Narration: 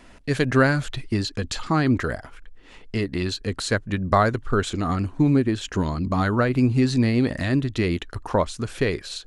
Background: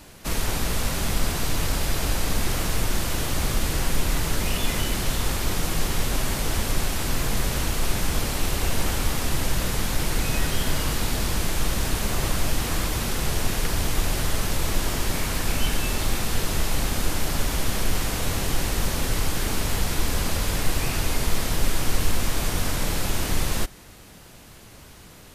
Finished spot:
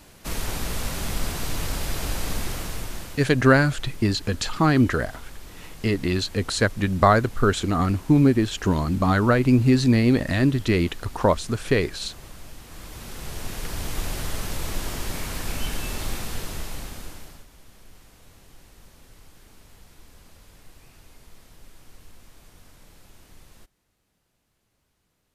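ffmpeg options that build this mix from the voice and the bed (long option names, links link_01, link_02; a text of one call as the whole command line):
ffmpeg -i stem1.wav -i stem2.wav -filter_complex "[0:a]adelay=2900,volume=2dB[link_01];[1:a]volume=10dB,afade=type=out:start_time=2.31:duration=1:silence=0.177828,afade=type=in:start_time=12.67:duration=1.35:silence=0.211349,afade=type=out:start_time=16.1:duration=1.36:silence=0.0841395[link_02];[link_01][link_02]amix=inputs=2:normalize=0" out.wav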